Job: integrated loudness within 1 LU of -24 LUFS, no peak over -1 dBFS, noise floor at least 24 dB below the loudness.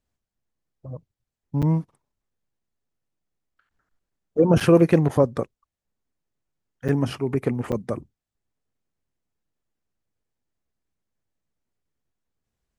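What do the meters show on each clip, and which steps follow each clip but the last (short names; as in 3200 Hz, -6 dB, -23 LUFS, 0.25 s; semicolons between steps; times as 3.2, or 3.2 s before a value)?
dropouts 4; longest dropout 6.7 ms; loudness -22.0 LUFS; peak -5.0 dBFS; loudness target -24.0 LUFS
-> interpolate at 1.62/4.6/6.88/7.72, 6.7 ms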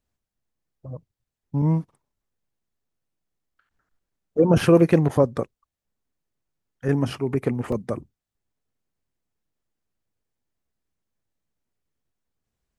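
dropouts 0; loudness -22.0 LUFS; peak -5.0 dBFS; loudness target -24.0 LUFS
-> gain -2 dB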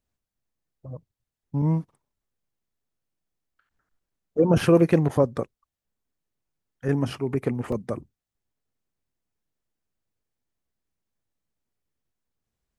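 loudness -24.0 LUFS; peak -7.0 dBFS; noise floor -88 dBFS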